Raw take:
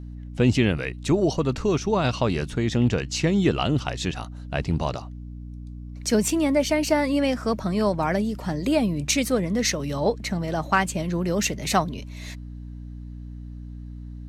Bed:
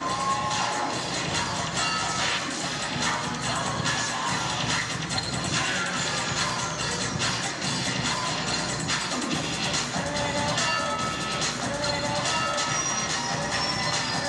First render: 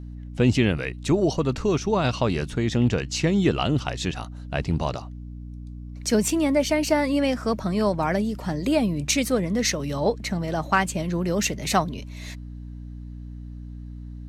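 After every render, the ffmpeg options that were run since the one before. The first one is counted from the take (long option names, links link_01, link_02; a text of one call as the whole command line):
ffmpeg -i in.wav -af anull out.wav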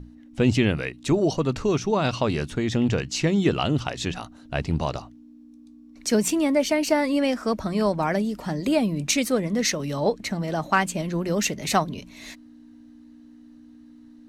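ffmpeg -i in.wav -af "bandreject=frequency=60:width_type=h:width=6,bandreject=frequency=120:width_type=h:width=6,bandreject=frequency=180:width_type=h:width=6" out.wav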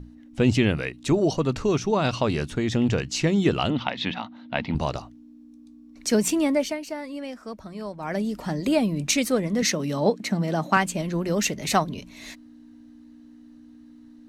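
ffmpeg -i in.wav -filter_complex "[0:a]asettb=1/sr,asplit=3[link_01][link_02][link_03];[link_01]atrim=end=3.704[link_04];[link_02]atrim=start=3.7:end=4.75,asetpts=PTS-STARTPTS,afade=type=in:duration=0.004:curve=qsin,afade=type=out:start_time=1.046:duration=0.004:curve=qsin,highpass=150,equalizer=frequency=150:width_type=q:width=4:gain=-5,equalizer=frequency=220:width_type=q:width=4:gain=10,equalizer=frequency=390:width_type=q:width=4:gain=-9,equalizer=frequency=900:width_type=q:width=4:gain=7,equalizer=frequency=2100:width_type=q:width=4:gain=7,equalizer=frequency=3500:width_type=q:width=4:gain=6,lowpass=frequency=4200:width=0.5412,lowpass=frequency=4200:width=1.3066[link_05];[link_03]atrim=start=4.746[link_06];[link_04][link_05]acrossfade=duration=0.004:curve1=hsin:curve2=qsin[link_07];[link_07][link_06]acrossfade=duration=0.004:curve1=qsin:curve2=hsin,asettb=1/sr,asplit=3[link_08][link_09][link_10];[link_08]atrim=end=9.624[link_11];[link_09]atrim=start=9.62:end=10.77,asetpts=PTS-STARTPTS,afade=type=in:duration=0.004:curve=qsin,afade=type=out:start_time=1.146:duration=0.004:curve=qsin,highpass=frequency=180:width_type=q:width=1.6[link_12];[link_10]atrim=start=10.766[link_13];[link_11][link_12]acrossfade=duration=0.004:curve1=hsin:curve2=qsin[link_14];[link_14][link_13]acrossfade=duration=0.004:curve1=qsin:curve2=hsin,asplit=3[link_15][link_16][link_17];[link_15]atrim=end=6.8,asetpts=PTS-STARTPTS,afade=type=out:start_time=6.4:duration=0.4:curve=qsin:silence=0.251189[link_18];[link_16]atrim=start=6.8:end=8,asetpts=PTS-STARTPTS,volume=-12dB[link_19];[link_17]atrim=start=8,asetpts=PTS-STARTPTS,afade=type=in:duration=0.4:curve=qsin:silence=0.251189[link_20];[link_18][link_19][link_20]concat=n=3:v=0:a=1" out.wav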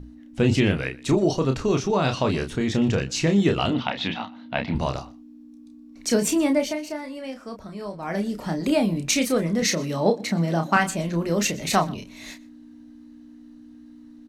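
ffmpeg -i in.wav -filter_complex "[0:a]asplit=2[link_01][link_02];[link_02]adelay=30,volume=-6dB[link_03];[link_01][link_03]amix=inputs=2:normalize=0,aecho=1:1:122:0.075" out.wav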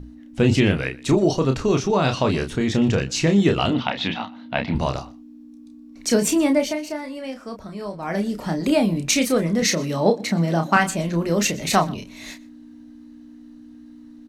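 ffmpeg -i in.wav -af "volume=2.5dB" out.wav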